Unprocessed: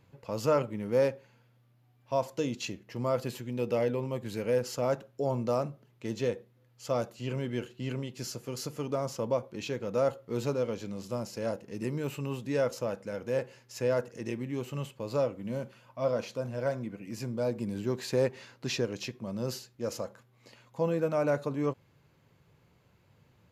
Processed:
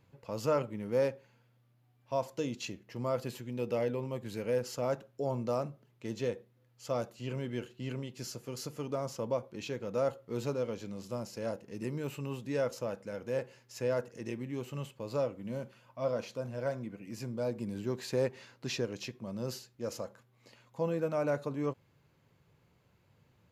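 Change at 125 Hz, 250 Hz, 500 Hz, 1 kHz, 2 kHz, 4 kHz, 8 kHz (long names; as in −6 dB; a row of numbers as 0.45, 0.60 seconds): −3.5, −3.5, −3.5, −3.5, −3.5, −3.5, −3.5 decibels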